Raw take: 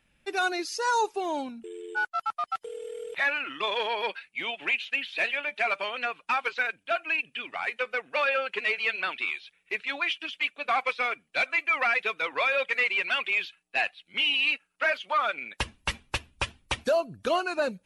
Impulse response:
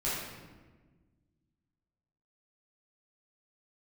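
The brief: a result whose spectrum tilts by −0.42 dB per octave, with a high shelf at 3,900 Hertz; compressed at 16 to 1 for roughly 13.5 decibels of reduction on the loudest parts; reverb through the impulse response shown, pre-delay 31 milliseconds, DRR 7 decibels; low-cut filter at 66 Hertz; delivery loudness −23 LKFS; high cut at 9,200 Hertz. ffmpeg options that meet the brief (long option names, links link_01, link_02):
-filter_complex "[0:a]highpass=66,lowpass=9200,highshelf=frequency=3900:gain=-7.5,acompressor=threshold=-35dB:ratio=16,asplit=2[link_01][link_02];[1:a]atrim=start_sample=2205,adelay=31[link_03];[link_02][link_03]afir=irnorm=-1:irlink=0,volume=-14dB[link_04];[link_01][link_04]amix=inputs=2:normalize=0,volume=15.5dB"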